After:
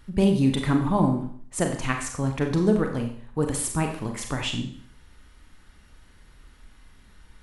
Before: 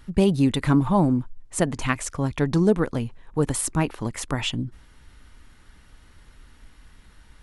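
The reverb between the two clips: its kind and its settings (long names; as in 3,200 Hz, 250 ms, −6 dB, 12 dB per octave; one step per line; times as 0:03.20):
four-comb reverb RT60 0.54 s, combs from 30 ms, DRR 3.5 dB
level −3 dB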